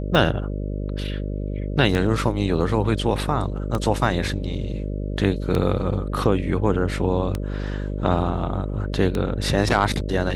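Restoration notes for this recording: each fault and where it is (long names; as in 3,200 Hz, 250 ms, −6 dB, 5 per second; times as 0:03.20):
mains buzz 50 Hz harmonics 12 −27 dBFS
scratch tick 33 1/3 rpm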